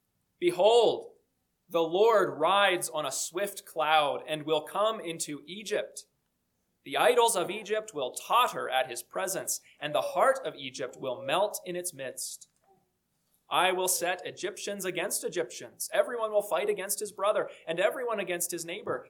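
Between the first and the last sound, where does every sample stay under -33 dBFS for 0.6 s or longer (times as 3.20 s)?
1.00–1.74 s
5.99–6.88 s
12.35–13.51 s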